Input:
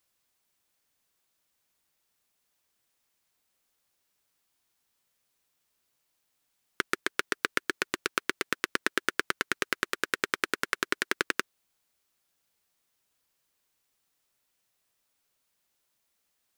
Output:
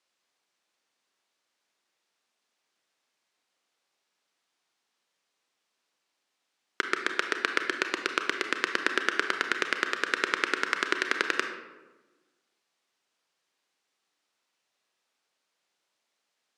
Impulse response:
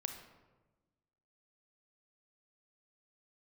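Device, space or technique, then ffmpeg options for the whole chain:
supermarket ceiling speaker: -filter_complex "[0:a]highpass=270,lowpass=5.9k[a];[1:a]atrim=start_sample=2205[b];[a][b]afir=irnorm=-1:irlink=0,volume=3.5dB"

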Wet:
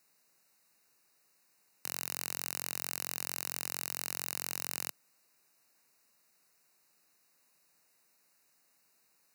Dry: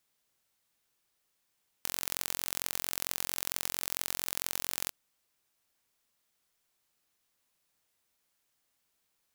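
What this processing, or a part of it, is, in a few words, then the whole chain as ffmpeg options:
PA system with an anti-feedback notch: -af "highpass=f=130:w=0.5412,highpass=f=130:w=1.3066,asuperstop=centerf=3300:order=8:qfactor=3.8,alimiter=limit=-17.5dB:level=0:latency=1:release=10,volume=7dB"

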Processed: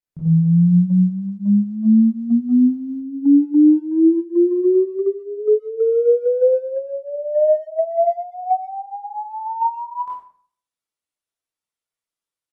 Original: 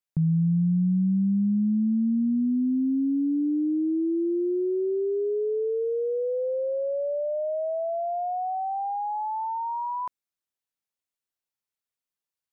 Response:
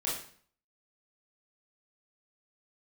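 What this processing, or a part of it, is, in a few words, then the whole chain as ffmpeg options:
speakerphone in a meeting room: -filter_complex "[1:a]atrim=start_sample=2205[a];[0:a][a]afir=irnorm=-1:irlink=0,asplit=2[b][c];[c]adelay=130,highpass=300,lowpass=3.4k,asoftclip=type=hard:threshold=-19.5dB,volume=-29dB[d];[b][d]amix=inputs=2:normalize=0,dynaudnorm=f=120:g=5:m=4dB,agate=range=-7dB:threshold=-16dB:ratio=16:detection=peak" -ar 48000 -c:a libopus -b:a 32k

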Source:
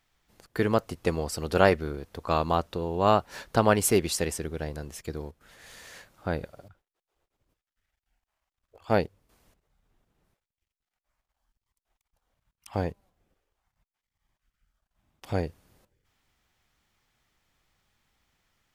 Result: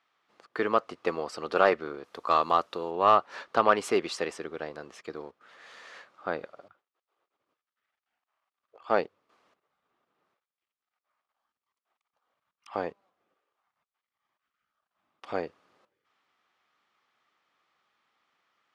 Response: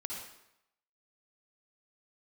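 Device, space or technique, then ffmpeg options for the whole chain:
intercom: -filter_complex "[0:a]asettb=1/sr,asplit=3[a][b][c];[a]atrim=end=2.044[d];[b]atrim=start=2.04:end=2.91,asetpts=PTS-STARTPTS,afade=t=in:d=0.004:c=qsin,afade=t=out:st=0.866:d=0.004:c=qsin,aemphasis=mode=production:type=50fm[e];[c]atrim=start=2.906[f];[d][e]acrossfade=d=0.004:c1=hsin:c2=qsin[g];[g][f]acrossfade=d=0.004:c1=qsin:c2=hsin,highpass=350,lowpass=3.9k,equalizer=f=1.2k:t=o:w=0.3:g=9,asoftclip=type=tanh:threshold=-8dB"

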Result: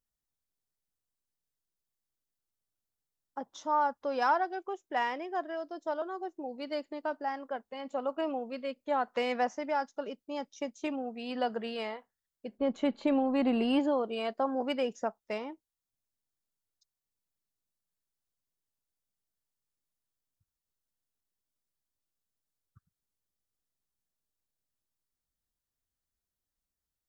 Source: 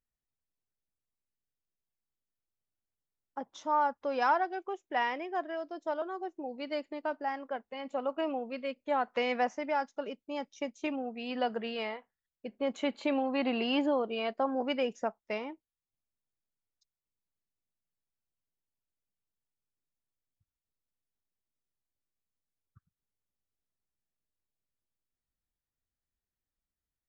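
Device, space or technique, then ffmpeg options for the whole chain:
exciter from parts: -filter_complex "[0:a]asplit=3[a][b][c];[a]afade=t=out:st=12.57:d=0.02[d];[b]aemphasis=mode=reproduction:type=bsi,afade=t=in:st=12.57:d=0.02,afade=t=out:st=13.78:d=0.02[e];[c]afade=t=in:st=13.78:d=0.02[f];[d][e][f]amix=inputs=3:normalize=0,asplit=2[g][h];[h]highpass=f=2.2k:w=0.5412,highpass=f=2.2k:w=1.3066,asoftclip=type=tanh:threshold=-36.5dB,volume=-5.5dB[i];[g][i]amix=inputs=2:normalize=0"

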